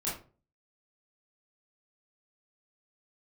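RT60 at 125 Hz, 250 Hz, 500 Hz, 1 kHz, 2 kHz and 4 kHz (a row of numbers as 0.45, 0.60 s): 0.55, 0.45, 0.40, 0.35, 0.30, 0.25 s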